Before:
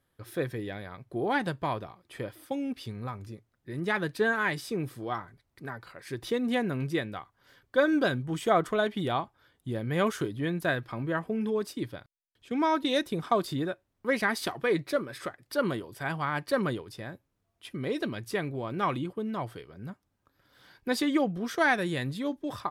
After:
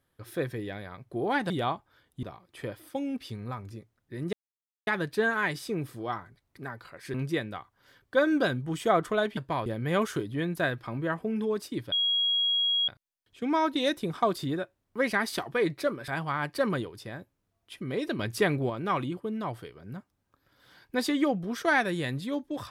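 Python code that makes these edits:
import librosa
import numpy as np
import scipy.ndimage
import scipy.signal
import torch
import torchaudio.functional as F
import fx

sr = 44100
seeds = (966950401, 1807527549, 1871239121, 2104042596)

y = fx.edit(x, sr, fx.swap(start_s=1.5, length_s=0.29, other_s=8.98, other_length_s=0.73),
    fx.insert_silence(at_s=3.89, length_s=0.54),
    fx.cut(start_s=6.16, length_s=0.59),
    fx.insert_tone(at_s=11.97, length_s=0.96, hz=3300.0, db=-23.0),
    fx.cut(start_s=15.17, length_s=0.84),
    fx.clip_gain(start_s=18.12, length_s=0.51, db=6.0), tone=tone)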